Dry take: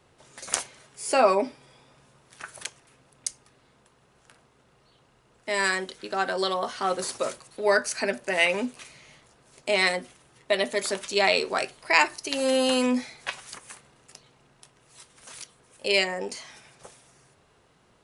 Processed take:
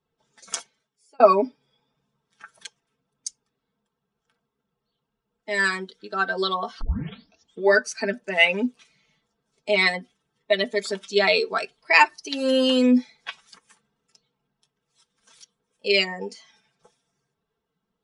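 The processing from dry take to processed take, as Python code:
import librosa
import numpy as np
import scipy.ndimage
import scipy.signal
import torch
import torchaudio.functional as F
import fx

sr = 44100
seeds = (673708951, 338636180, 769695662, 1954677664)

y = fx.edit(x, sr, fx.fade_out_span(start_s=0.51, length_s=0.69),
    fx.tape_start(start_s=6.81, length_s=0.9), tone=tone)
y = fx.bin_expand(y, sr, power=1.5)
y = scipy.signal.sosfilt(scipy.signal.butter(2, 5300.0, 'lowpass', fs=sr, output='sos'), y)
y = y + 0.67 * np.pad(y, (int(4.5 * sr / 1000.0), 0))[:len(y)]
y = y * 10.0 ** (4.5 / 20.0)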